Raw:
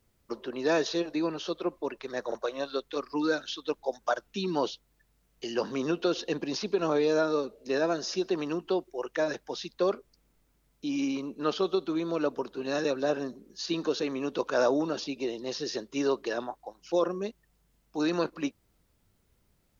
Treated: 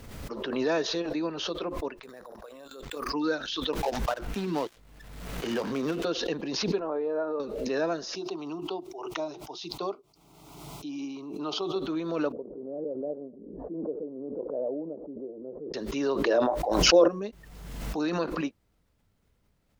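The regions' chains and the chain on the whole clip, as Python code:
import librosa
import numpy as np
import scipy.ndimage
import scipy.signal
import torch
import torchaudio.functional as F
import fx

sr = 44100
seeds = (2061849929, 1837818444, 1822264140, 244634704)

y = fx.chain(x, sr, fx.resample_bad(factor=4, down='none', up='hold'),
    fx.level_steps(step_db=23),
    fx.transient(attack_db=4, sustain_db=8), at=(2.03, 3.1))
y = fx.chain(y, sr, fx.dead_time(dead_ms=0.14),
    fx.band_squash(depth_pct=70), at=(3.73, 6.05))
y = fx.chain(y, sr, fx.lowpass(hz=1000.0, slope=12),
    fx.peak_eq(hz=140.0, db=-14.5, octaves=1.8), at=(6.79, 7.4))
y = fx.chain(y, sr, fx.highpass(hz=240.0, slope=6),
    fx.high_shelf(hz=4900.0, db=-4.5),
    fx.fixed_phaser(hz=340.0, stages=8), at=(8.15, 11.76))
y = fx.chain(y, sr, fx.steep_lowpass(hz=600.0, slope=36),
    fx.tilt_eq(slope=3.5), at=(12.32, 15.74))
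y = fx.chain(y, sr, fx.peak_eq(hz=540.0, db=8.5, octaves=0.99),
    fx.small_body(hz=(340.0, 600.0), ring_ms=100, db=7),
    fx.sustainer(db_per_s=45.0), at=(16.25, 17.08))
y = fx.high_shelf(y, sr, hz=5600.0, db=-8.0)
y = fx.notch(y, sr, hz=360.0, q=12.0)
y = fx.pre_swell(y, sr, db_per_s=39.0)
y = F.gain(torch.from_numpy(y), -1.0).numpy()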